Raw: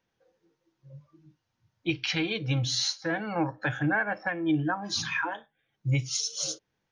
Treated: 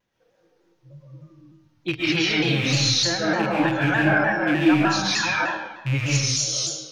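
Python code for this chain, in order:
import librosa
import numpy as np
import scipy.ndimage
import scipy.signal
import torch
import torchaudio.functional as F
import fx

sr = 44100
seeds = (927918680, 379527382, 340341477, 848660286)

y = fx.rattle_buzz(x, sr, strikes_db=-31.0, level_db=-23.0)
y = fx.rev_freeverb(y, sr, rt60_s=1.1, hf_ratio=0.9, predelay_ms=95, drr_db=-5.5)
y = fx.vibrato_shape(y, sr, shape='saw_down', rate_hz=3.3, depth_cents=100.0)
y = F.gain(torch.from_numpy(y), 2.0).numpy()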